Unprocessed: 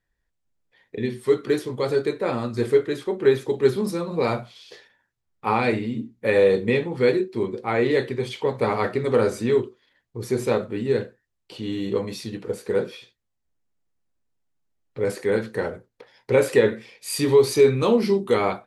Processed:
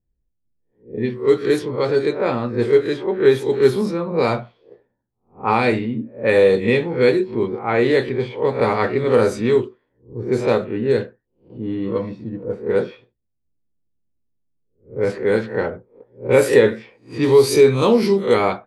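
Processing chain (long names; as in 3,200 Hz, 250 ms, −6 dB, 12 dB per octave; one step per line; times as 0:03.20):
peak hold with a rise ahead of every peak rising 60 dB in 0.33 s
0:11.88–0:12.53: notch comb filter 400 Hz
low-pass that shuts in the quiet parts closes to 330 Hz, open at −15.5 dBFS
level +3.5 dB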